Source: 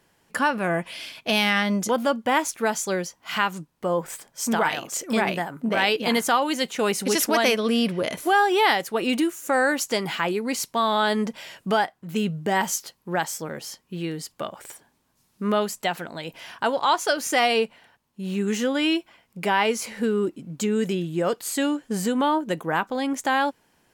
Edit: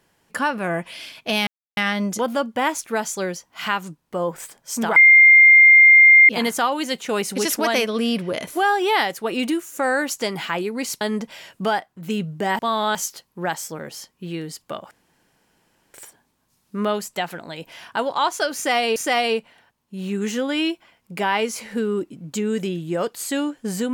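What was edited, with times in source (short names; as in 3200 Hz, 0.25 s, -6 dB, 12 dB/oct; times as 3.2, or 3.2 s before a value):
1.47 insert silence 0.30 s
4.66–5.99 bleep 2110 Hz -6.5 dBFS
10.71–11.07 move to 12.65
14.61 insert room tone 1.03 s
17.22–17.63 loop, 2 plays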